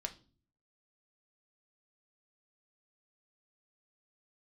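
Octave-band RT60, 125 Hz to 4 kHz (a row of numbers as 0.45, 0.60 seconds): 0.75, 0.70, 0.45, 0.35, 0.30, 0.35 seconds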